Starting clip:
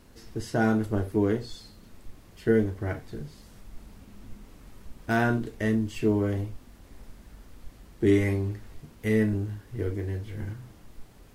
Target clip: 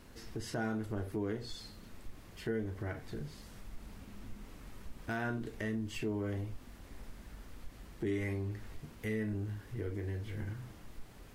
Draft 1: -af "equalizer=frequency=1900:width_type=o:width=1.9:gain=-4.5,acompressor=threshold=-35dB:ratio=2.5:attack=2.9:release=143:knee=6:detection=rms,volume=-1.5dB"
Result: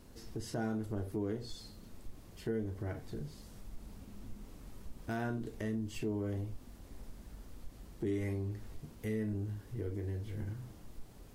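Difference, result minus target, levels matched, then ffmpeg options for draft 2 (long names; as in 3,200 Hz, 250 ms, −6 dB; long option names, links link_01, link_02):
2,000 Hz band −5.5 dB
-af "equalizer=frequency=1900:width_type=o:width=1.9:gain=3,acompressor=threshold=-35dB:ratio=2.5:attack=2.9:release=143:knee=6:detection=rms,volume=-1.5dB"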